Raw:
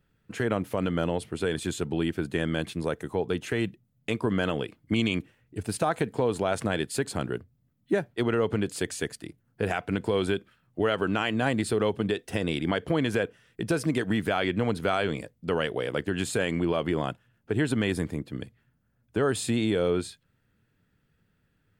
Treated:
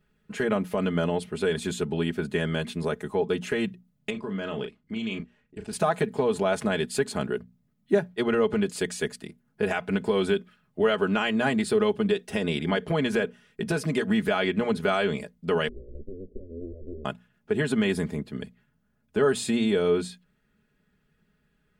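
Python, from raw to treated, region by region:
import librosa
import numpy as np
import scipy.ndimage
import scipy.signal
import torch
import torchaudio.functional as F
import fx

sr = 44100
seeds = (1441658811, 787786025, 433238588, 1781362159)

y = fx.chain(x, sr, fx.lowpass(hz=6700.0, slope=12),
    fx.level_steps(step_db=17),
    fx.doubler(ms=36.0, db=-7.5), at=(4.1, 5.73))
y = fx.chain(y, sr, fx.lower_of_two(delay_ms=1.1),
    fx.cheby_ripple(hz=540.0, ripple_db=3),
    fx.fixed_phaser(hz=400.0, stages=4), at=(15.68, 17.05))
y = fx.high_shelf(y, sr, hz=9600.0, db=-5.5)
y = fx.hum_notches(y, sr, base_hz=60, count=4)
y = y + 0.74 * np.pad(y, (int(4.8 * sr / 1000.0), 0))[:len(y)]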